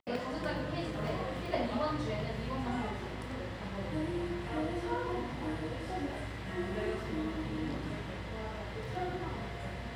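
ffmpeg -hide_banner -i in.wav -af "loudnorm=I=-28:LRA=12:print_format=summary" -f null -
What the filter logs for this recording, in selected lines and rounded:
Input Integrated:    -37.5 LUFS
Input True Peak:     -18.7 dBTP
Input LRA:             3.0 LU
Input Threshold:     -47.5 LUFS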